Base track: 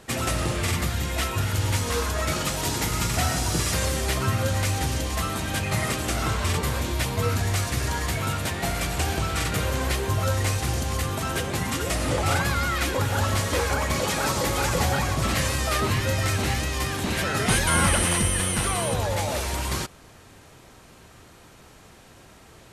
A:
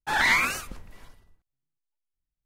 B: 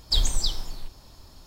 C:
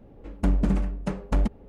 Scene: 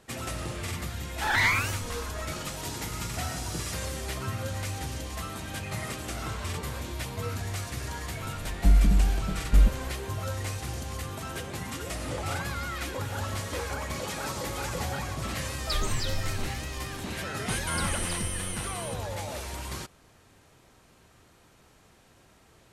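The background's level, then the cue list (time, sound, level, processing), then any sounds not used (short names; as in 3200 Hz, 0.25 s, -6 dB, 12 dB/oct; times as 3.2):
base track -9 dB
1.14 add A -2.5 dB
8.21 add C -15 dB + tilt -4.5 dB/oct
15.58 add B -0.5 dB + limiter -21 dBFS
17.66 add B -8 dB + compressor 4:1, threshold -27 dBFS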